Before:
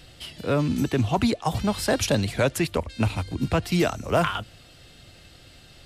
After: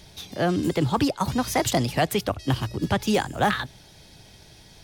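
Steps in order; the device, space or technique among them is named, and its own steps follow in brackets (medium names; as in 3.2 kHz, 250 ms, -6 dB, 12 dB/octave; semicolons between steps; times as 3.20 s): nightcore (tape speed +21%)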